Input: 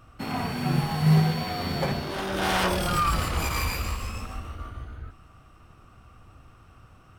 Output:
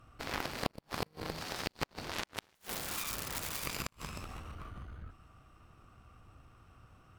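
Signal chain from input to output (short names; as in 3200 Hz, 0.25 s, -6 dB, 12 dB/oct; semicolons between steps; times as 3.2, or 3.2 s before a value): compressor 5:1, threshold -27 dBFS, peak gain reduction 11 dB; 2.55–3.67 wrapped overs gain 24.5 dB; added harmonics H 2 -26 dB, 3 -8 dB, 4 -24 dB, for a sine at -18 dBFS; flipped gate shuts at -23 dBFS, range -36 dB; gain +7.5 dB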